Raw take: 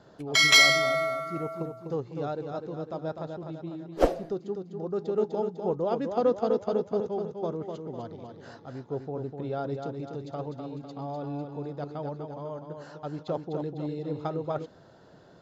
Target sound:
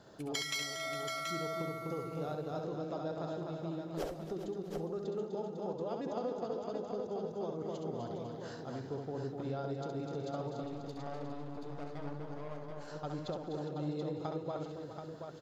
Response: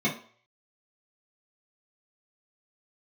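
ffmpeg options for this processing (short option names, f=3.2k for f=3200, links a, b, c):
-filter_complex "[0:a]aemphasis=mode=production:type=cd,acompressor=threshold=-33dB:ratio=12,asettb=1/sr,asplit=3[a][b][c];[a]atrim=end=10.634[d];[b]atrim=start=10.63:end=12.88,asetpts=PTS-STARTPTS,afade=t=in:d=0.004:c=qsin,afade=t=out:st=2.246:d=0.004:c=qsin,aeval=exprs='(tanh(79.4*val(0)+0.75)-tanh(0.75))/79.4':c=same[e];[c]atrim=start=12.876[f];[d][e]acrossfade=d=0.004:c1=hsin:c2=qsin[g];[g][f]acrossfade=d=0.004:c1=qsin:c2=hsin,aecho=1:1:67|206|275|408|654|730:0.501|0.106|0.211|0.251|0.106|0.501,volume=-3dB"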